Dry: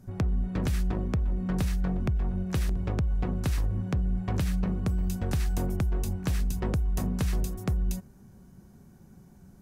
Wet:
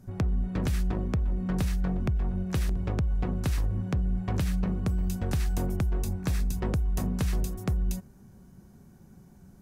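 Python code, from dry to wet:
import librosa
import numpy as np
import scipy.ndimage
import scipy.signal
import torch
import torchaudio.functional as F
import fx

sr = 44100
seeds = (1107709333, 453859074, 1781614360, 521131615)

y = fx.notch(x, sr, hz=3000.0, q=12.0, at=(6.02, 6.54))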